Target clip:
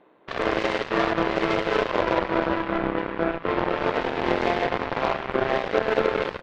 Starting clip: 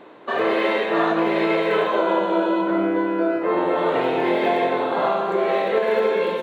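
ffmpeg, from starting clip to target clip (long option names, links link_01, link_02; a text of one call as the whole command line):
ffmpeg -i in.wav -af "aeval=exprs='0.422*(cos(1*acos(clip(val(0)/0.422,-1,1)))-cos(1*PI/2))+0.0075*(cos(5*acos(clip(val(0)/0.422,-1,1)))-cos(5*PI/2))+0.0841*(cos(7*acos(clip(val(0)/0.422,-1,1)))-cos(7*PI/2))':channel_layout=same,tremolo=f=130:d=0.462,aemphasis=mode=reproduction:type=50kf" out.wav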